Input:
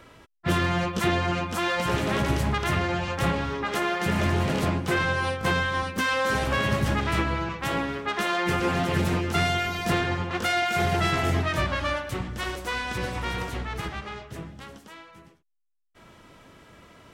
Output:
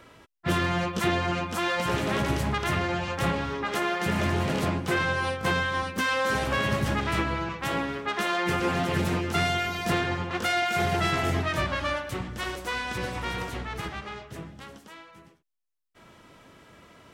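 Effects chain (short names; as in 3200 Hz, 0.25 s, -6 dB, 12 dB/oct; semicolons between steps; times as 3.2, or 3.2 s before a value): low shelf 63 Hz -6.5 dB; gain -1 dB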